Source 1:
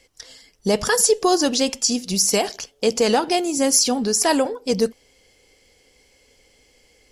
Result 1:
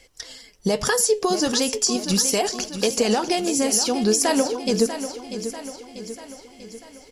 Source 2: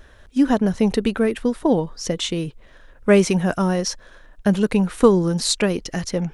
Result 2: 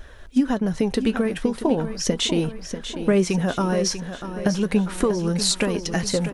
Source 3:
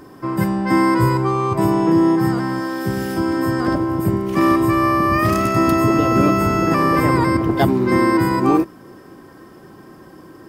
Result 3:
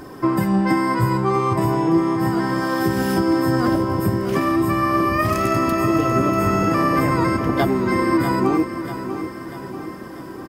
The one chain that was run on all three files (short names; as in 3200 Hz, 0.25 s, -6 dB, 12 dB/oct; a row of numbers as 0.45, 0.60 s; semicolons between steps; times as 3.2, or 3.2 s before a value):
compressor, threshold -21 dBFS; flange 0.38 Hz, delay 1.2 ms, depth 9.3 ms, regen +65%; on a send: feedback echo 0.642 s, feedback 54%, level -10.5 dB; on the sum: normalise peaks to -6 dBFS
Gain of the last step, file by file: +8.0, +7.5, +9.5 dB